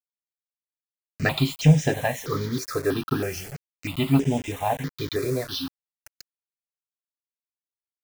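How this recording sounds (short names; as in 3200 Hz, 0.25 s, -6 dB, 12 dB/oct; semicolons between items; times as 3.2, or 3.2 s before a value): a quantiser's noise floor 6-bit, dither none; notches that jump at a steady rate 3.1 Hz 820–4300 Hz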